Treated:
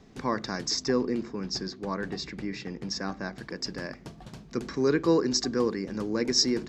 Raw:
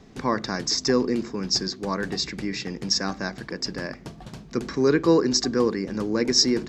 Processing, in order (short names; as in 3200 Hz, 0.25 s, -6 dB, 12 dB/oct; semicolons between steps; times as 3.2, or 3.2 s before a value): 0.82–3.36 high shelf 5700 Hz -> 3900 Hz -10.5 dB; gain -4.5 dB